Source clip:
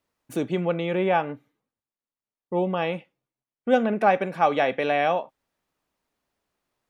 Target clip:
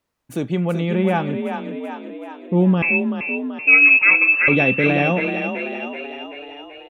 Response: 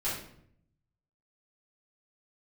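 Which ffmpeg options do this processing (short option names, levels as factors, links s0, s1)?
-filter_complex "[0:a]asubboost=boost=10:cutoff=240,asettb=1/sr,asplit=3[s0][s1][s2];[s0]atrim=end=2.824[s3];[s1]atrim=start=2.82:end=4.48,asetpts=PTS-STARTPTS,afade=t=in:d=0.004:c=qsin,afade=t=out:st=1.656:d=0.004:c=qsin,lowpass=f=2400:t=q:w=0.5098,lowpass=f=2400:t=q:w=0.6013,lowpass=f=2400:t=q:w=0.9,lowpass=f=2400:t=q:w=2.563,afreqshift=-2800[s4];[s2]atrim=start=4.476[s5];[s3][s4]acrossfade=d=0.004:c1=hsin:c2=qsin[s6];[s6][s5]acrossfade=d=0.004:c1=qsin:c2=hsin,asplit=9[s7][s8][s9][s10][s11][s12][s13][s14][s15];[s8]adelay=382,afreqshift=34,volume=0.447[s16];[s9]adelay=764,afreqshift=68,volume=0.269[s17];[s10]adelay=1146,afreqshift=102,volume=0.16[s18];[s11]adelay=1528,afreqshift=136,volume=0.0966[s19];[s12]adelay=1910,afreqshift=170,volume=0.0582[s20];[s13]adelay=2292,afreqshift=204,volume=0.0347[s21];[s14]adelay=2674,afreqshift=238,volume=0.0209[s22];[s15]adelay=3056,afreqshift=272,volume=0.0124[s23];[s7][s16][s17][s18][s19][s20][s21][s22][s23]amix=inputs=9:normalize=0,volume=1.26"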